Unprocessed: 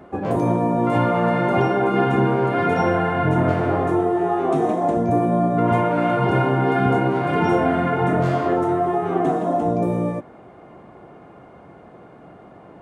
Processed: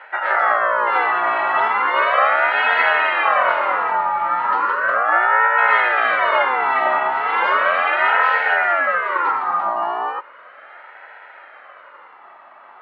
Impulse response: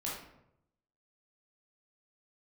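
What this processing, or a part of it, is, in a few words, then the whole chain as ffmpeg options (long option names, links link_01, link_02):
voice changer toy: -filter_complex "[0:a]aeval=exprs='val(0)*sin(2*PI*830*n/s+830*0.4/0.36*sin(2*PI*0.36*n/s))':channel_layout=same,highpass=570,equalizer=frequency=580:width_type=q:width=4:gain=9,equalizer=frequency=910:width_type=q:width=4:gain=4,equalizer=frequency=1300:width_type=q:width=4:gain=5,equalizer=frequency=2000:width_type=q:width=4:gain=6,equalizer=frequency=2900:width_type=q:width=4:gain=5,equalizer=frequency=4300:width_type=q:width=4:gain=5,lowpass=frequency=4700:width=0.5412,lowpass=frequency=4700:width=1.3066,aemphasis=mode=reproduction:type=75fm,asettb=1/sr,asplit=3[link_01][link_02][link_03];[link_01]atrim=end=4.904[link_04];[link_02]atrim=start=4.9:end=5.79,asetpts=PTS-STARTPTS,afade=type=in:duration=0.004:curve=qsin,afade=type=out:start_time=0.886:duration=0.004:curve=qsin,lowpass=5000[link_05];[link_03]atrim=start=5.786[link_06];[link_04][link_05]acrossfade=duration=0.004:curve1=hsin:curve2=qsin[link_07];[link_07][link_06]acrossfade=duration=0.004:curve1=qsin:curve2=hsin,tiltshelf=frequency=730:gain=-6"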